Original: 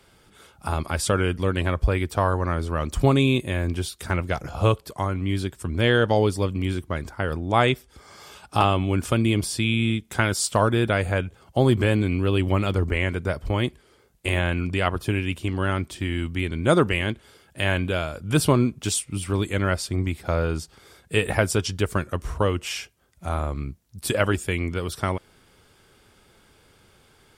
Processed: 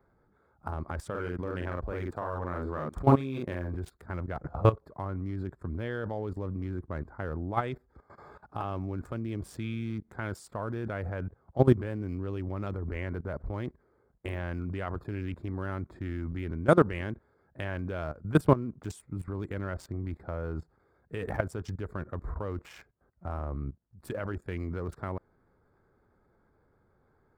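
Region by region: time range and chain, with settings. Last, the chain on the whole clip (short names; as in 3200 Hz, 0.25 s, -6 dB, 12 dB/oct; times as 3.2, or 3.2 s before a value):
1.1–3.75 low shelf 120 Hz -10.5 dB + doubler 45 ms -3 dB
whole clip: Wiener smoothing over 15 samples; band shelf 5300 Hz -10 dB 2.6 oct; level quantiser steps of 17 dB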